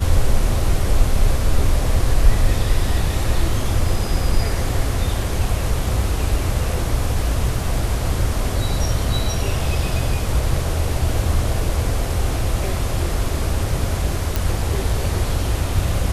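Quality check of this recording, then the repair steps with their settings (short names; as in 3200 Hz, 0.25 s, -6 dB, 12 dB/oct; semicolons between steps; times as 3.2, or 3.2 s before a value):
14.36 pop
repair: de-click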